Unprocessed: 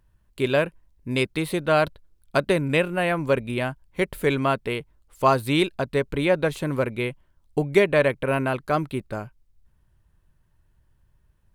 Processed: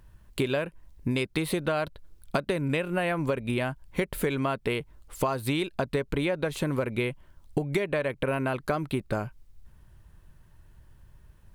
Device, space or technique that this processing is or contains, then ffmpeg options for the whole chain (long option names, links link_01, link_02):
serial compression, leveller first: -af "acompressor=threshold=-23dB:ratio=2,acompressor=threshold=-34dB:ratio=6,volume=9dB"